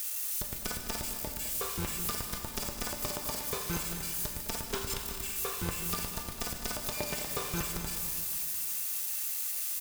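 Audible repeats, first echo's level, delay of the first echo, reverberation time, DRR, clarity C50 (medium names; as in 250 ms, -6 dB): 1, -12.0 dB, 208 ms, 2.6 s, 2.5 dB, 3.5 dB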